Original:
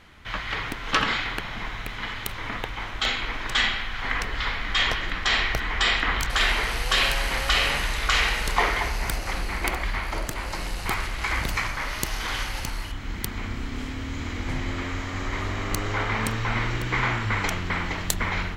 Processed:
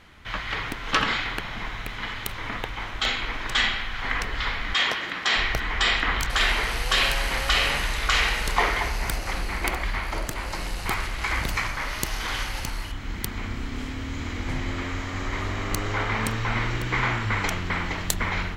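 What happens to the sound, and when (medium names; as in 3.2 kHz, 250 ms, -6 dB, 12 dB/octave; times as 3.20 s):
4.73–5.36 s: high-pass 190 Hz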